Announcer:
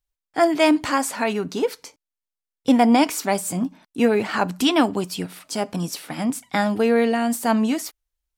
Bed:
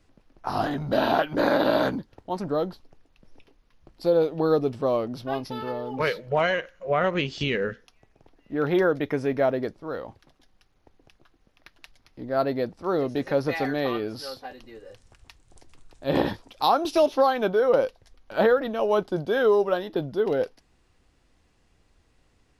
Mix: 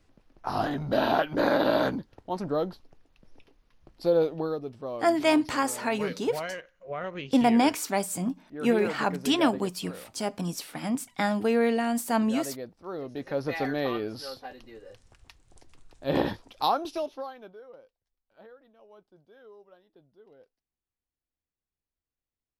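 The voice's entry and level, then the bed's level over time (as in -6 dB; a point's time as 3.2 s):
4.65 s, -5.5 dB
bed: 4.31 s -2 dB
4.56 s -11.5 dB
12.98 s -11.5 dB
13.62 s -2.5 dB
16.63 s -2.5 dB
17.82 s -31.5 dB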